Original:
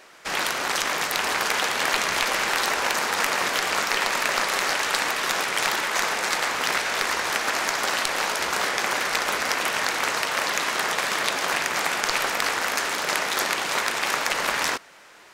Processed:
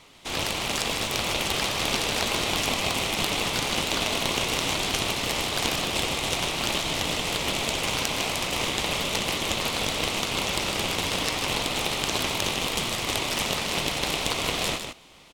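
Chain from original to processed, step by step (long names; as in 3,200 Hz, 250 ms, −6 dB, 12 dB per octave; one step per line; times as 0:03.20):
ring modulation 1,600 Hz
single-tap delay 154 ms −7.5 dB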